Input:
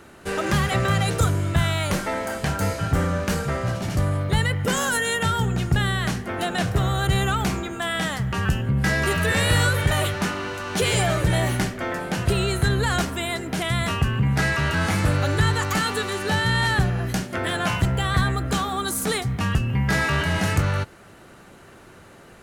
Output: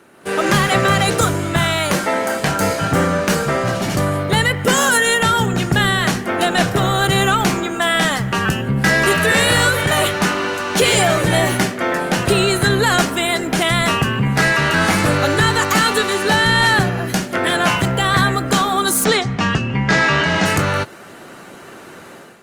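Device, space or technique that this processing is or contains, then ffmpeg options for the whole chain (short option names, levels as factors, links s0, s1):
video call: -filter_complex "[0:a]asettb=1/sr,asplit=3[s0][s1][s2];[s0]atrim=end=19.044[s3];[s1]atrim=start=19.04:end=20.46,asetpts=PTS-STARTPTS,afade=t=in:d=0.004:c=qsin,afade=t=out:st=1.416:d=0.004:c=qsin,lowpass=f=6800:w=0.5412,lowpass=f=6800:w=1.3066[s4];[s2]atrim=start=20.456[s5];[s3][s4]acrossfade=d=0.004:c1=hsin:c2=qsin[s6];[s6][s5]acrossfade=d=0.004:c1=qsin:c2=hsin,highpass=180,dynaudnorm=f=110:g=5:m=3.35" -ar 48000 -c:a libopus -b:a 32k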